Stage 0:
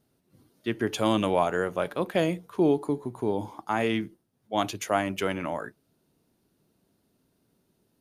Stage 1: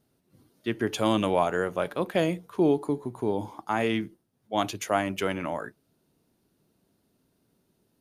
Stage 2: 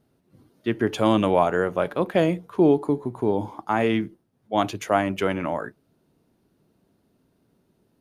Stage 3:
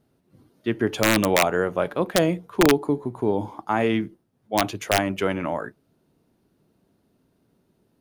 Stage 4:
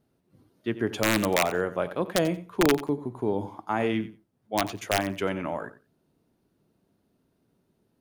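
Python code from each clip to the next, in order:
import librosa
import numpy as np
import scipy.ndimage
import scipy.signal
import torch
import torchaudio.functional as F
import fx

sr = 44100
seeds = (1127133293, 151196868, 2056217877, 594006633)

y1 = x
y2 = fx.high_shelf(y1, sr, hz=3200.0, db=-9.0)
y2 = y2 * librosa.db_to_amplitude(5.0)
y3 = (np.mod(10.0 ** (8.5 / 20.0) * y2 + 1.0, 2.0) - 1.0) / 10.0 ** (8.5 / 20.0)
y4 = fx.echo_feedback(y3, sr, ms=90, feedback_pct=15, wet_db=-15.0)
y4 = y4 * librosa.db_to_amplitude(-4.5)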